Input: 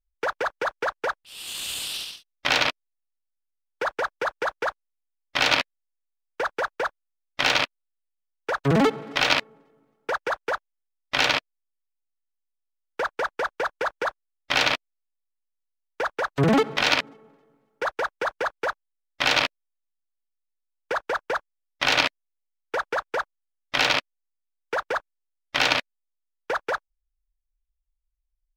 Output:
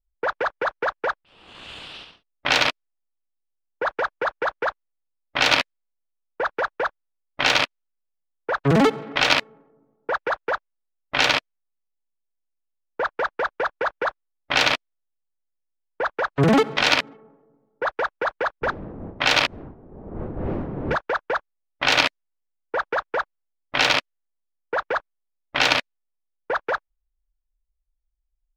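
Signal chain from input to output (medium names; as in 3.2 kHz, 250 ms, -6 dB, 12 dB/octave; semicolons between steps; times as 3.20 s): 18.61–20.95 s: wind noise 360 Hz -34 dBFS; level-controlled noise filter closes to 760 Hz, open at -17.5 dBFS; trim +2.5 dB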